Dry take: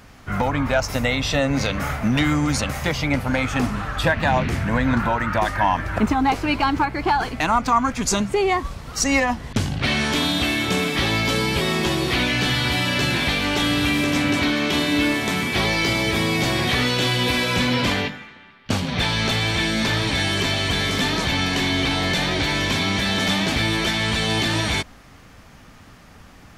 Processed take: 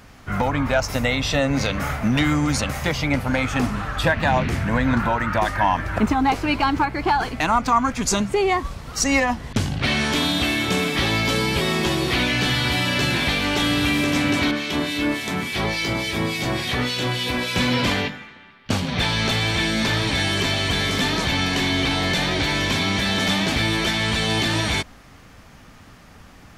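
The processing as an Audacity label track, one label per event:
14.510000	17.560000	harmonic tremolo 3.5 Hz, crossover 2 kHz

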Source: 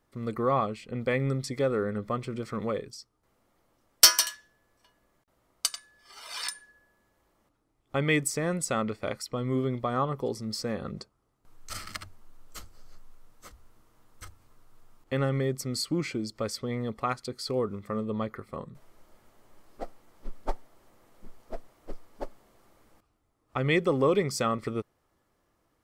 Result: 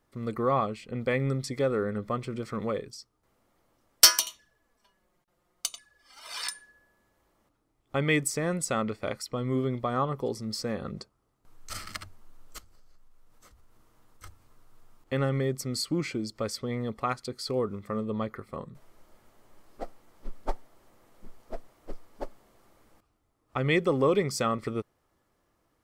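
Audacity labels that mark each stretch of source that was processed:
4.190000	6.250000	touch-sensitive flanger delay at rest 5.9 ms, full sweep at -30.5 dBFS
12.580000	14.240000	compression 4:1, threshold -53 dBFS

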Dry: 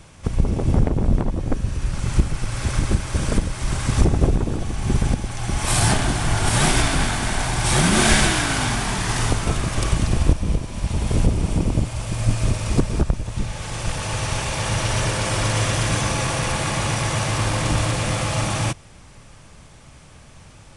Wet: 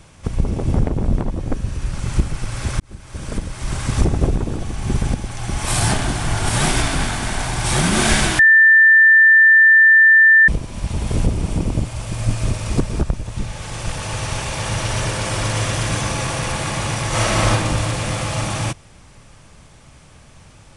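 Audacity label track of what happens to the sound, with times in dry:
2.800000	3.770000	fade in
8.390000	10.480000	bleep 1.78 kHz -6.5 dBFS
17.080000	17.500000	reverb throw, RT60 0.82 s, DRR -5.5 dB

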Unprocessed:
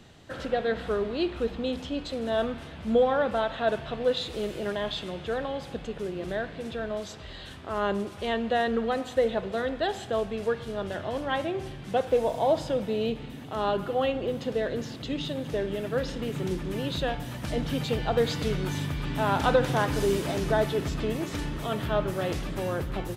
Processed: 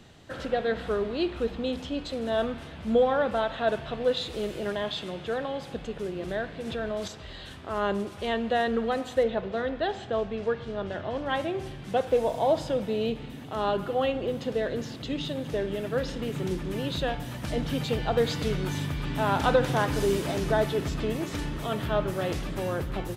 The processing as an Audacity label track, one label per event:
4.820000	5.730000	high-pass 90 Hz
6.670000	7.080000	level flattener amount 50%
9.230000	11.260000	distance through air 110 m

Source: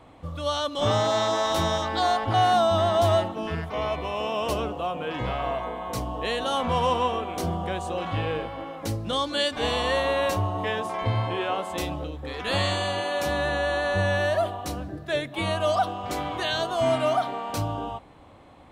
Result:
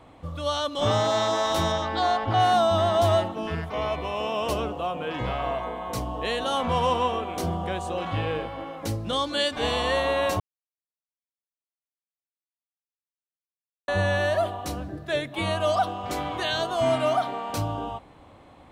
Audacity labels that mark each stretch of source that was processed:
1.720000	2.400000	distance through air 68 m
10.400000	13.880000	mute

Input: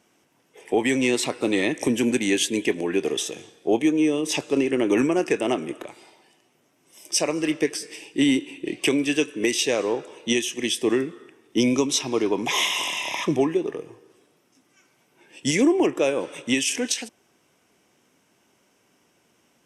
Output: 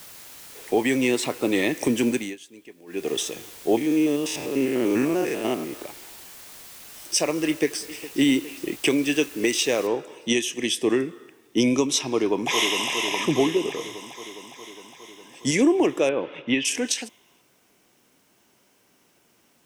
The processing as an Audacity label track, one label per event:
0.770000	1.550000	peaking EQ 5.6 kHz -3 dB 1.9 oct
2.080000	3.140000	dip -22.5 dB, fades 0.28 s
3.770000	5.820000	spectrogram pixelated in time every 100 ms
7.470000	8.090000	echo throw 410 ms, feedback 70%, level -16.5 dB
8.670000	9.310000	expander -32 dBFS
9.870000	9.870000	noise floor step -44 dB -67 dB
12.120000	12.900000	echo throw 410 ms, feedback 70%, level -7 dB
13.790000	15.520000	peaking EQ 2.7 kHz -6.5 dB 0.51 oct
16.090000	16.650000	low-pass 3.4 kHz 24 dB/octave

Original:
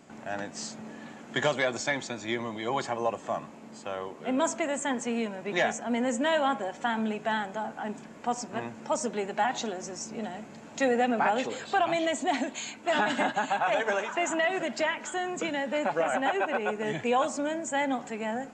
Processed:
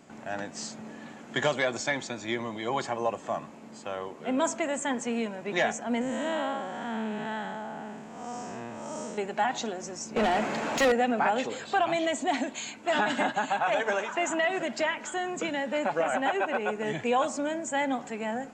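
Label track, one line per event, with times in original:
6.010000	9.180000	spectral blur width 255 ms
10.160000	10.920000	overdrive pedal drive 29 dB, tone 2.4 kHz, clips at -15.5 dBFS

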